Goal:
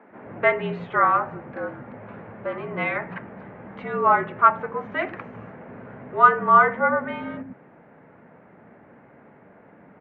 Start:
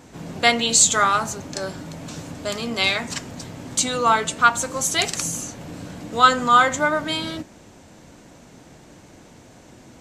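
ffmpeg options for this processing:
-filter_complex "[0:a]acrossover=split=290[a][b];[a]adelay=100[c];[c][b]amix=inputs=2:normalize=0,highpass=f=210:t=q:w=0.5412,highpass=f=210:t=q:w=1.307,lowpass=f=2.1k:t=q:w=0.5176,lowpass=f=2.1k:t=q:w=0.7071,lowpass=f=2.1k:t=q:w=1.932,afreqshift=-54"

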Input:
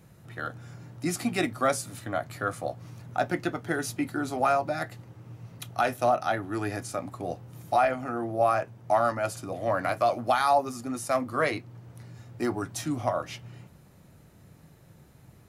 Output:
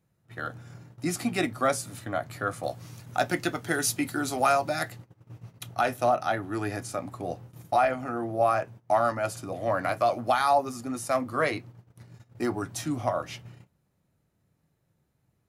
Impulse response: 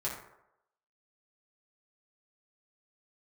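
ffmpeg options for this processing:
-filter_complex "[0:a]agate=range=-18dB:threshold=-44dB:ratio=16:detection=peak,asettb=1/sr,asplit=3[a][b][c];[a]atrim=end=2.634[d];[b]atrim=start=2.63:end=4.92,asetpts=PTS-STARTPTS,afade=t=in:d=0.004:c=qsin,afade=t=out:st=2.286:d=0.004:c=qsin,highshelf=f=2.7k:g=10.5[e];[c]atrim=start=4.916[f];[d][e]acrossfade=d=0.004:c1=hsin:c2=qsin[g];[g][f]acrossfade=d=0.004:c1=qsin:c2=hsin"

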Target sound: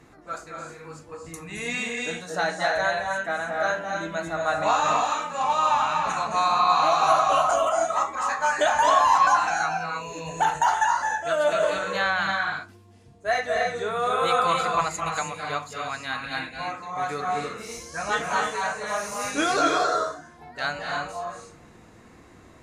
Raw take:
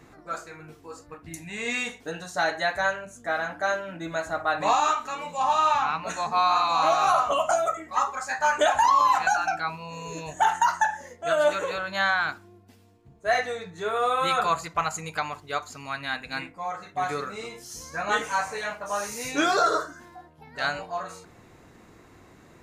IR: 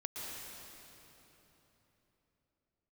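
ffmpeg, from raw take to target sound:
-filter_complex "[1:a]atrim=start_sample=2205,afade=t=out:st=0.22:d=0.01,atrim=end_sample=10143,asetrate=22932,aresample=44100[a];[0:a][a]afir=irnorm=-1:irlink=0"

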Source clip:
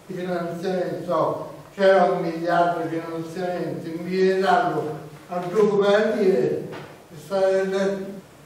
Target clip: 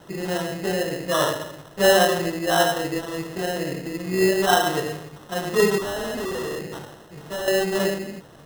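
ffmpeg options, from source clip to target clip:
-filter_complex "[0:a]acrusher=samples=19:mix=1:aa=0.000001,asettb=1/sr,asplit=3[a][b][c];[a]atrim=end=5.784[d];[b]atrim=start=5.78:end=7.48,asetpts=PTS-STARTPTS,afade=t=in:d=0.004:c=qsin,afade=t=out:st=1.696:d=0.004:c=qsin,volume=27dB,asoftclip=hard,volume=-27dB[e];[c]atrim=start=7.476[f];[d][e]acrossfade=d=0.004:c1=hsin:c2=qsin[g];[g][f]acrossfade=d=0.004:c1=qsin:c2=hsin"

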